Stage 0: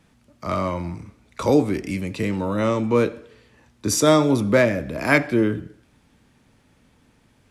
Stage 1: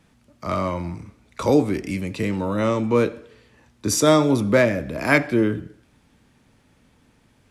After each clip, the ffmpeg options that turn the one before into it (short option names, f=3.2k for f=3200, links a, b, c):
-af anull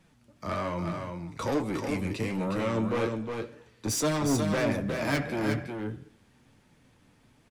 -af "asoftclip=type=tanh:threshold=-21dB,flanger=delay=5.2:depth=5.3:regen=45:speed=1.2:shape=triangular,aecho=1:1:361:0.531"